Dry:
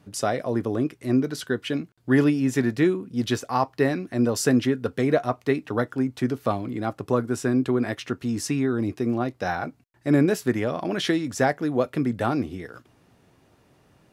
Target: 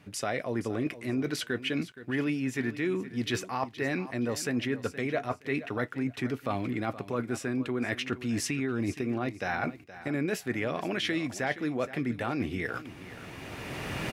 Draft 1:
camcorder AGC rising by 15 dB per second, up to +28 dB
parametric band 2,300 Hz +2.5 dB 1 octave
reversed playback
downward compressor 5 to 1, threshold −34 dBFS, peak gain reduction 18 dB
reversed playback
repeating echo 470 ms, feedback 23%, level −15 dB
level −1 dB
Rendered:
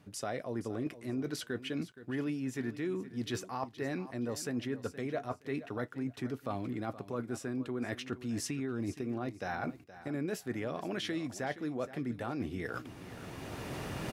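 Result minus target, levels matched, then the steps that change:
downward compressor: peak gain reduction +4.5 dB; 2,000 Hz band −3.5 dB
change: parametric band 2,300 Hz +10 dB 1 octave
change: downward compressor 5 to 1, threshold −27 dBFS, peak gain reduction 13.5 dB

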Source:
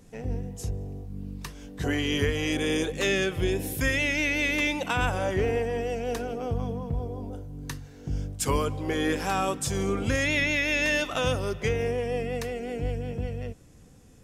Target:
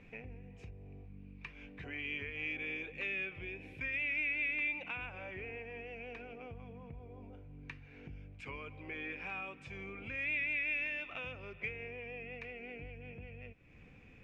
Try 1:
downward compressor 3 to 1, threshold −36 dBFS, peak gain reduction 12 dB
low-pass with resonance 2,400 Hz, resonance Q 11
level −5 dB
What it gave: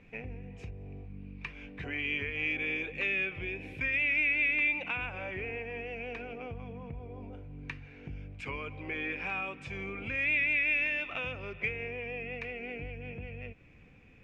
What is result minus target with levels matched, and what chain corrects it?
downward compressor: peak gain reduction −7 dB
downward compressor 3 to 1, threshold −46.5 dBFS, peak gain reduction 19 dB
low-pass with resonance 2,400 Hz, resonance Q 11
level −5 dB

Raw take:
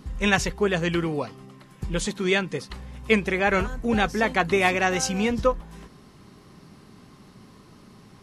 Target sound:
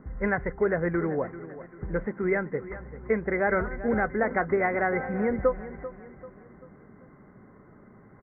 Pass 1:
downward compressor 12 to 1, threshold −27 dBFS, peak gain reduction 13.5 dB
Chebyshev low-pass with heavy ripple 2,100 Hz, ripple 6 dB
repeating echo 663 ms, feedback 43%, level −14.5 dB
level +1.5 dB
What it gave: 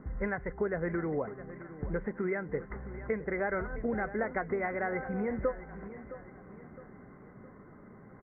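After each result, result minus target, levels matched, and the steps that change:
echo 273 ms late; downward compressor: peak gain reduction +8 dB
change: repeating echo 390 ms, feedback 43%, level −14.5 dB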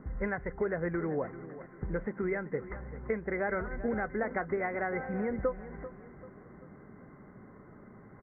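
downward compressor: peak gain reduction +8 dB
change: downward compressor 12 to 1, threshold −18 dBFS, peak gain reduction 5.5 dB

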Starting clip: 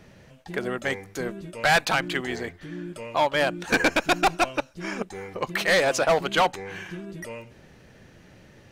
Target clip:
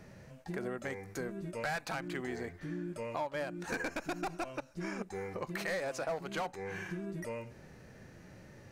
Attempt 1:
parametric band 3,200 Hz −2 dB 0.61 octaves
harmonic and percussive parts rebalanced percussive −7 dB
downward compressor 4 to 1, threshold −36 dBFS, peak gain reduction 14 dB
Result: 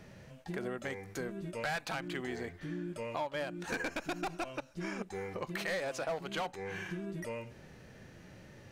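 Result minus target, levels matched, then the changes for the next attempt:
4,000 Hz band +3.0 dB
change: parametric band 3,200 Hz −8 dB 0.61 octaves

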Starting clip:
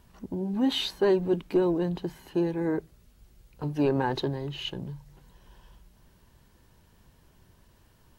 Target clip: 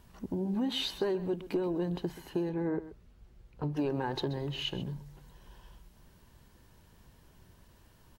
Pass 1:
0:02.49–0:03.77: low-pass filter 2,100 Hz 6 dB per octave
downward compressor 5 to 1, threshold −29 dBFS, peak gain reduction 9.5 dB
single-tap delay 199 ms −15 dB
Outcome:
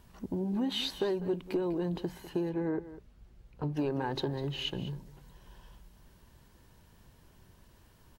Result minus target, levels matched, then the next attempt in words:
echo 68 ms late
0:02.49–0:03.77: low-pass filter 2,100 Hz 6 dB per octave
downward compressor 5 to 1, threshold −29 dBFS, peak gain reduction 9.5 dB
single-tap delay 131 ms −15 dB

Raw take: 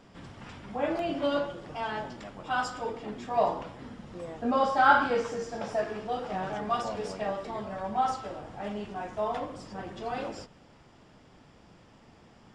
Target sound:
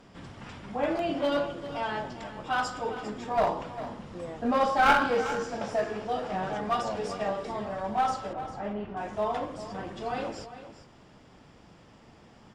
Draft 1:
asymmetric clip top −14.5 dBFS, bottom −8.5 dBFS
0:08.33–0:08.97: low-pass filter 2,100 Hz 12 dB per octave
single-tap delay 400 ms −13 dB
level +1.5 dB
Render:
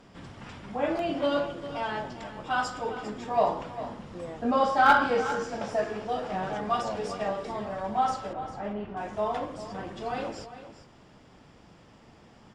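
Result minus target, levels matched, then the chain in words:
asymmetric clip: distortion −11 dB
asymmetric clip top −23.5 dBFS, bottom −8.5 dBFS
0:08.33–0:08.97: low-pass filter 2,100 Hz 12 dB per octave
single-tap delay 400 ms −13 dB
level +1.5 dB

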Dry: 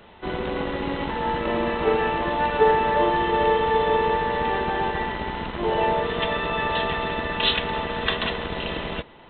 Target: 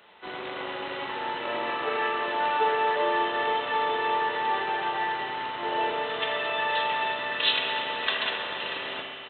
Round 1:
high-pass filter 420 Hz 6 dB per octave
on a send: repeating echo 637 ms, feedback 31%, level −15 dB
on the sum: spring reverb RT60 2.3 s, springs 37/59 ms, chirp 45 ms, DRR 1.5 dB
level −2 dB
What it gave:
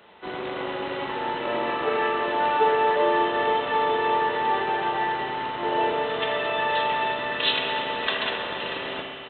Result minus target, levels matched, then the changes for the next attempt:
500 Hz band +2.5 dB
change: high-pass filter 1,100 Hz 6 dB per octave

